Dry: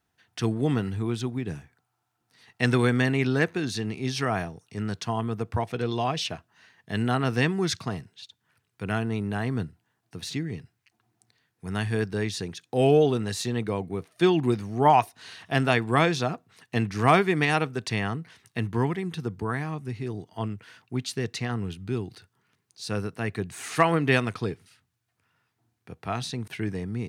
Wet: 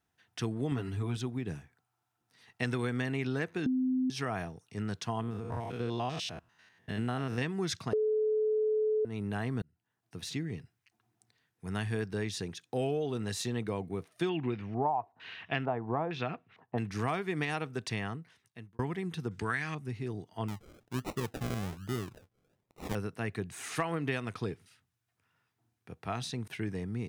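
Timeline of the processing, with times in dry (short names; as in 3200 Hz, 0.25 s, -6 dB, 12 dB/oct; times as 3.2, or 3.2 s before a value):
0.71–1.17 comb 7.2 ms, depth 72%
3.66–4.1 bleep 257 Hz -14.5 dBFS
5.21–7.42 stepped spectrum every 0.1 s
7.93–9.05 bleep 431 Hz -11 dBFS
9.62–10.17 fade in linear
14.29–16.78 LFO low-pass square 1.1 Hz 850–2600 Hz
17.78–18.79 fade out
19.31–19.75 band shelf 3500 Hz +13.5 dB 2.9 oct
20.48–22.95 decimation with a swept rate 38×, swing 60% 1.2 Hz
whole clip: notch 4400 Hz, Q 23; compressor 6:1, threshold -24 dBFS; gain -4.5 dB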